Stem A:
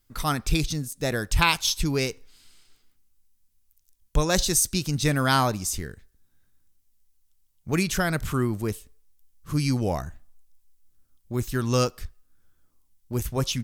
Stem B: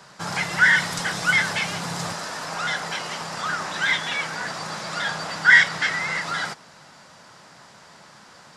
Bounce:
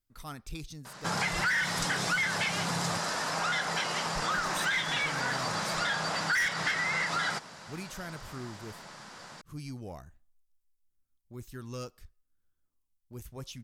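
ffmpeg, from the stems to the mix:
-filter_complex "[0:a]asoftclip=type=tanh:threshold=-13dB,volume=-16dB[a];[1:a]adelay=850,volume=0.5dB[b];[a][b]amix=inputs=2:normalize=0,asoftclip=type=tanh:threshold=-16.5dB,acompressor=threshold=-27dB:ratio=6"

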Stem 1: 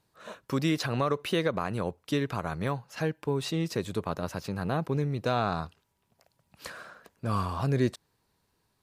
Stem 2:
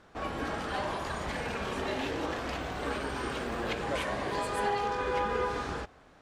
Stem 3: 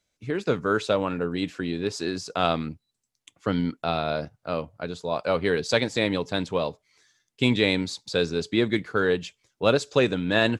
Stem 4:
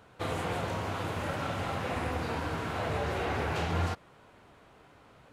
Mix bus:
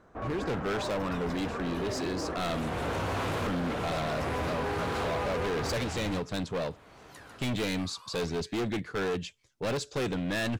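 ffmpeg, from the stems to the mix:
-filter_complex "[0:a]highpass=1.4k,acompressor=threshold=-37dB:ratio=6,aphaser=in_gain=1:out_gain=1:delay=2.6:decay=0.72:speed=0.48:type=triangular,adelay=500,volume=-12.5dB,asplit=2[a][b];[b]volume=-7dB[c];[1:a]lowpass=1.4k,bandreject=f=840:w=12,volume=0.5dB[d];[2:a]lowshelf=f=100:g=11,volume=-3dB,asplit=2[e][f];[3:a]aeval=exprs='0.112*(cos(1*acos(clip(val(0)/0.112,-1,1)))-cos(1*PI/2))+0.0141*(cos(5*acos(clip(val(0)/0.112,-1,1)))-cos(5*PI/2))':c=same,adelay=2250,volume=1.5dB[g];[f]apad=whole_len=333842[h];[g][h]sidechaincompress=threshold=-26dB:ratio=8:attack=5.3:release=768[i];[c]aecho=0:1:147:1[j];[a][d][e][i][j]amix=inputs=5:normalize=0,volume=28dB,asoftclip=hard,volume=-28dB"

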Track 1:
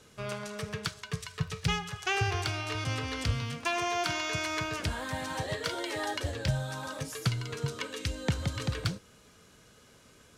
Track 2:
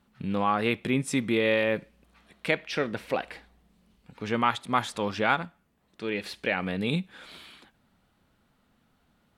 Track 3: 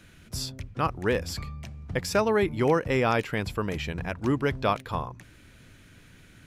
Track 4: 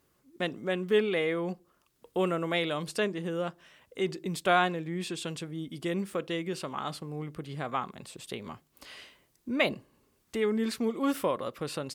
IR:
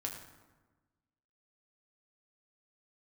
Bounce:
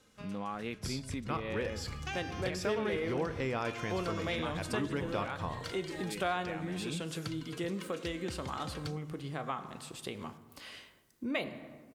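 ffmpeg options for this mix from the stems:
-filter_complex "[0:a]aecho=1:1:3.8:0.46,volume=-9dB[a];[1:a]equalizer=f=190:t=o:w=1.7:g=3.5,volume=-12dB,asplit=2[b][c];[2:a]lowpass=10k,adelay=500,volume=-7dB,asplit=2[d][e];[e]volume=-5.5dB[f];[3:a]adelay=1750,volume=-4.5dB,asplit=2[g][h];[h]volume=-3.5dB[i];[c]apad=whole_len=457567[j];[a][j]sidechaincompress=threshold=-43dB:ratio=8:attack=33:release=260[k];[4:a]atrim=start_sample=2205[l];[f][i]amix=inputs=2:normalize=0[m];[m][l]afir=irnorm=-1:irlink=0[n];[k][b][d][g][n]amix=inputs=5:normalize=0,acompressor=threshold=-36dB:ratio=2"

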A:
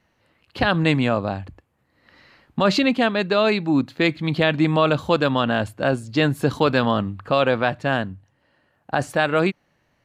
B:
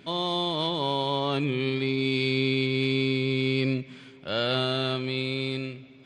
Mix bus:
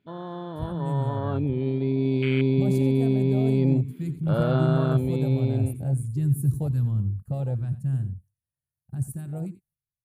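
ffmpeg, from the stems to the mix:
-filter_complex "[0:a]agate=range=-8dB:threshold=-51dB:ratio=16:detection=peak,firequalizer=gain_entry='entry(130,0);entry(240,-22);entry(3500,-24);entry(9600,15)':delay=0.05:min_phase=1,volume=-3.5dB,asplit=2[a][b];[b]volume=-13.5dB[c];[1:a]bass=f=250:g=6,treble=f=4k:g=-5,volume=-7.5dB[d];[c]aecho=0:1:88:1[e];[a][d][e]amix=inputs=3:normalize=0,afwtdn=0.0178,dynaudnorm=f=420:g=7:m=9dB"

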